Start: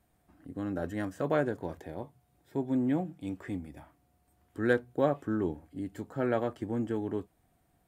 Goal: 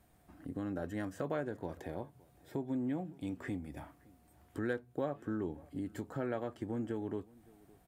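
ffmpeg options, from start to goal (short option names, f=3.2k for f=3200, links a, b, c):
-filter_complex "[0:a]acompressor=threshold=-43dB:ratio=2.5,asplit=2[a][b];[b]adelay=565.6,volume=-24dB,highshelf=f=4k:g=-12.7[c];[a][c]amix=inputs=2:normalize=0,volume=4dB"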